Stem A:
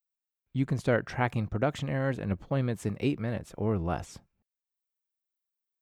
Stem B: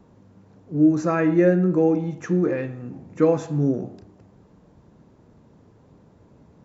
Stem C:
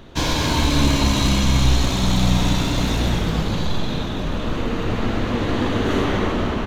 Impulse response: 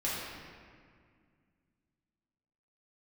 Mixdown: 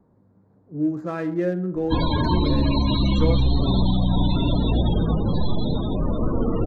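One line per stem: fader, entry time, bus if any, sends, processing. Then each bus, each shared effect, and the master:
-15.5 dB, 1.40 s, bus A, no send, none
-6.5 dB, 0.00 s, no bus, no send, local Wiener filter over 15 samples
+1.5 dB, 1.75 s, bus A, no send, none
bus A: 0.0 dB, loudest bins only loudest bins 32; peak limiter -11.5 dBFS, peak gain reduction 6.5 dB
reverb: none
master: none

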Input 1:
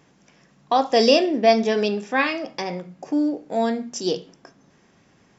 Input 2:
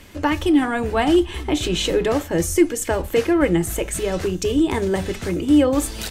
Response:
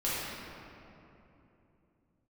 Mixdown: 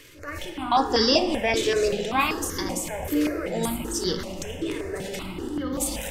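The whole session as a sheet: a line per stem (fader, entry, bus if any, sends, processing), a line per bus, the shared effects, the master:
+1.5 dB, 0.00 s, send -20.5 dB, band-stop 680 Hz, Q 18
-2.0 dB, 0.00 s, send -12 dB, transient shaper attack -10 dB, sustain +9 dB; compression 3:1, threshold -21 dBFS, peak gain reduction 8 dB; auto duck -6 dB, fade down 0.20 s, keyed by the first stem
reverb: on, RT60 3.0 s, pre-delay 5 ms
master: bass shelf 310 Hz -7 dB; stepped phaser 5.2 Hz 210–2500 Hz

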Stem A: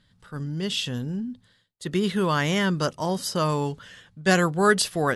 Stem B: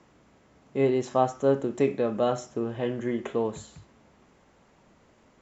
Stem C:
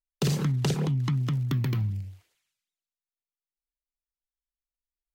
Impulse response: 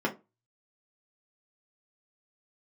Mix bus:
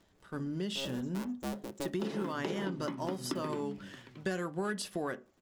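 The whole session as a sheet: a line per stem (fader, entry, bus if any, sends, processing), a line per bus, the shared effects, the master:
-8.5 dB, 0.00 s, no bus, send -14.5 dB, no echo send, waveshaping leveller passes 1
-16.5 dB, 0.00 s, bus A, send -17.5 dB, no echo send, cycle switcher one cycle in 2, inverted; reverb removal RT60 0.54 s; bass shelf 350 Hz +9.5 dB
+1.5 dB, 1.80 s, bus A, send -5 dB, echo send -19 dB, three-band isolator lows -21 dB, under 240 Hz, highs -21 dB, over 4.7 kHz; hum notches 50/100/150 Hz
bus A: 0.0 dB, treble shelf 2.3 kHz +10.5 dB; compression 1.5:1, threshold -53 dBFS, peak gain reduction 11 dB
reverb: on, RT60 0.25 s, pre-delay 3 ms
echo: delay 626 ms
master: compression 6:1, threshold -33 dBFS, peak gain reduction 15.5 dB

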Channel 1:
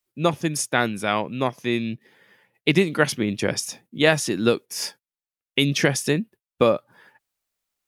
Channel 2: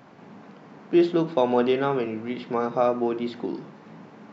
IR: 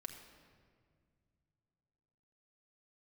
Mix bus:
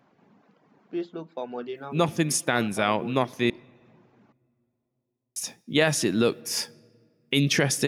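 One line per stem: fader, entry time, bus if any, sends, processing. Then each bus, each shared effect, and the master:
-0.5 dB, 1.75 s, muted 3.50–5.36 s, send -15 dB, none
-12.0 dB, 0.00 s, no send, reverb removal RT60 1 s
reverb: on, RT60 2.1 s, pre-delay 5 ms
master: peak limiter -10 dBFS, peak gain reduction 6.5 dB

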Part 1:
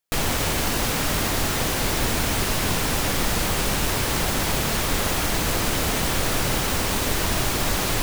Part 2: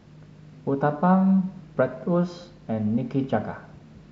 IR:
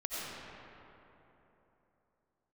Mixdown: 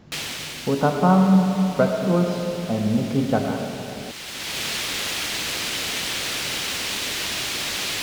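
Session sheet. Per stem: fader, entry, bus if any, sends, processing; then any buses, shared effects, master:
-8.0 dB, 0.00 s, no send, frequency weighting D; auto duck -14 dB, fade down 1.00 s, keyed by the second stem
0.0 dB, 0.00 s, send -5.5 dB, none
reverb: on, RT60 3.4 s, pre-delay 50 ms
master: none

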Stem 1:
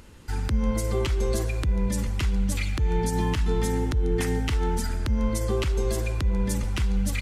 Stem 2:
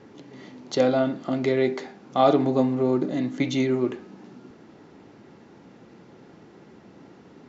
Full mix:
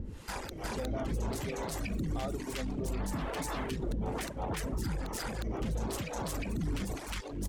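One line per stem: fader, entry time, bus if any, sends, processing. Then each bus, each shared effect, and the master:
+0.5 dB, 0.00 s, no send, echo send -4 dB, peak limiter -21.5 dBFS, peak gain reduction 8 dB; sine folder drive 7 dB, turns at -21.5 dBFS; harmonic tremolo 1.1 Hz, depth 100%, crossover 420 Hz; auto duck -8 dB, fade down 0.75 s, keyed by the second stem
-15.0 dB, 0.00 s, no send, no echo send, none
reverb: none
echo: delay 359 ms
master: reverb removal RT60 0.78 s; peak limiter -26.5 dBFS, peak gain reduction 8 dB

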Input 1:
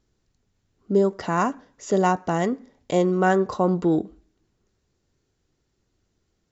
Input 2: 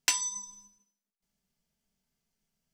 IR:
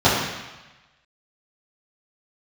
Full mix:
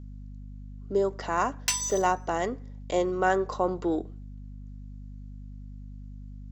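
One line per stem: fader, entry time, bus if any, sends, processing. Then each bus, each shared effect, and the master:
-3.0 dB, 0.00 s, no send, none
-6.5 dB, 1.60 s, no send, waveshaping leveller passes 2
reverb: none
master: high-pass 360 Hz 12 dB/octave; hum 50 Hz, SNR 11 dB

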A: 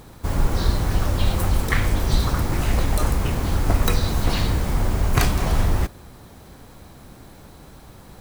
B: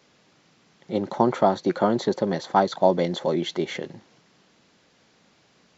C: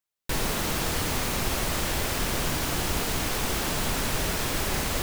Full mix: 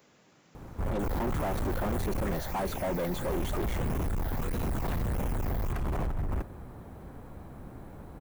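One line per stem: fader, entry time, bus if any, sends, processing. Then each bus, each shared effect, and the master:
-2.5 dB, 0.55 s, muted 2.35–3.26 s, no send, treble shelf 5.9 kHz -10.5 dB; compressor with a negative ratio -20 dBFS, ratio -0.5
-0.5 dB, 0.00 s, no send, treble shelf 2.7 kHz +11.5 dB
-4.5 dB, 0.70 s, no send, phase shifter stages 8, 1.6 Hz, lowest notch 320–1400 Hz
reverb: none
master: hard clipper -27.5 dBFS, distortion -4 dB; peaking EQ 4.5 kHz -14.5 dB 1.9 oct

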